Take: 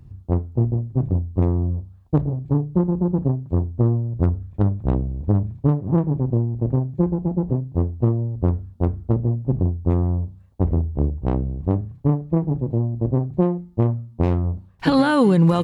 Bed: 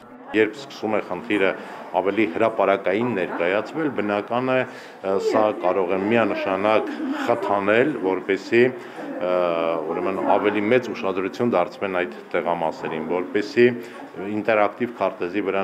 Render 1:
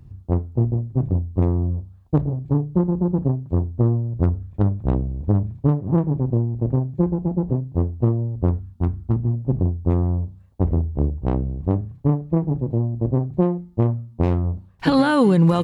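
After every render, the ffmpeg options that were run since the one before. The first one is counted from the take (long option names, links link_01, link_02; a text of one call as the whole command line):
ffmpeg -i in.wav -filter_complex "[0:a]asettb=1/sr,asplit=3[link_01][link_02][link_03];[link_01]atrim=end=8.594[link_04];[link_02]atrim=start=8.59:end=9.34,asetpts=PTS-STARTPTS,afade=type=in:duration=0.004:curve=qsin,afade=type=out:start_time=0.746:duration=0.004:curve=qsin,equalizer=frequency=520:width=2.2:gain=-14[link_05];[link_03]atrim=start=9.336[link_06];[link_04][link_05]acrossfade=duration=0.004:curve1=hsin:curve2=qsin[link_07];[link_07][link_06]acrossfade=duration=0.004:curve1=qsin:curve2=hsin" out.wav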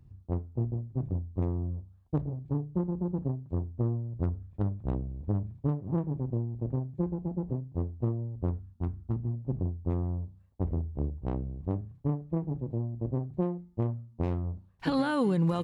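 ffmpeg -i in.wav -af "volume=-11dB" out.wav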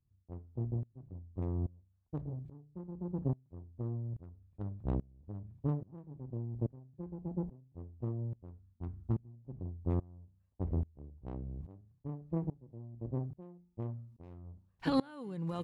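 ffmpeg -i in.wav -af "aeval=exprs='val(0)*pow(10,-25*if(lt(mod(-1.2*n/s,1),2*abs(-1.2)/1000),1-mod(-1.2*n/s,1)/(2*abs(-1.2)/1000),(mod(-1.2*n/s,1)-2*abs(-1.2)/1000)/(1-2*abs(-1.2)/1000))/20)':channel_layout=same" out.wav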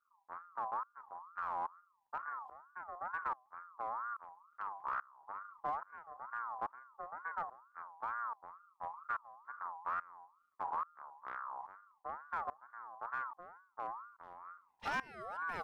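ffmpeg -i in.wav -af "asoftclip=type=hard:threshold=-30.5dB,aeval=exprs='val(0)*sin(2*PI*1100*n/s+1100*0.2/2.2*sin(2*PI*2.2*n/s))':channel_layout=same" out.wav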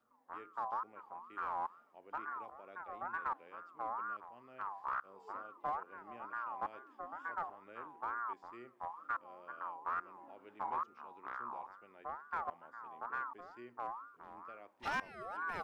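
ffmpeg -i in.wav -i bed.wav -filter_complex "[1:a]volume=-37.5dB[link_01];[0:a][link_01]amix=inputs=2:normalize=0" out.wav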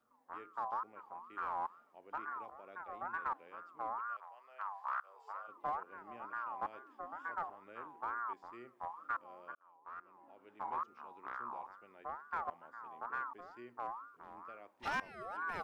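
ffmpeg -i in.wav -filter_complex "[0:a]asplit=3[link_01][link_02][link_03];[link_01]afade=type=out:start_time=3.98:duration=0.02[link_04];[link_02]highpass=frequency=570:width=0.5412,highpass=frequency=570:width=1.3066,afade=type=in:start_time=3.98:duration=0.02,afade=type=out:start_time=5.47:duration=0.02[link_05];[link_03]afade=type=in:start_time=5.47:duration=0.02[link_06];[link_04][link_05][link_06]amix=inputs=3:normalize=0,asplit=2[link_07][link_08];[link_07]atrim=end=9.55,asetpts=PTS-STARTPTS,afade=type=out:start_time=9.546:duration=0.004:curve=hsin[link_09];[link_08]atrim=start=9.55,asetpts=PTS-STARTPTS,afade=type=in:duration=1.39[link_10];[link_09][link_10]concat=n=2:v=0:a=1" out.wav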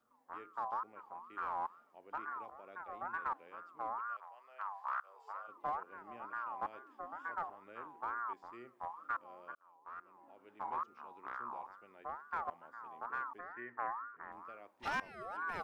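ffmpeg -i in.wav -filter_complex "[0:a]asettb=1/sr,asplit=3[link_01][link_02][link_03];[link_01]atrim=end=13.394[link_04];[link_02]atrim=start=13.39:end=14.32,asetpts=PTS-STARTPTS,afade=type=in:duration=0.004:curve=qsin,afade=type=out:start_time=0.926:duration=0.004:curve=qsin,lowpass=frequency=1800:width_type=q:width=7.6[link_05];[link_03]atrim=start=14.316[link_06];[link_04][link_05]acrossfade=duration=0.004:curve1=hsin:curve2=qsin[link_07];[link_07][link_06]acrossfade=duration=0.004:curve1=qsin:curve2=hsin" out.wav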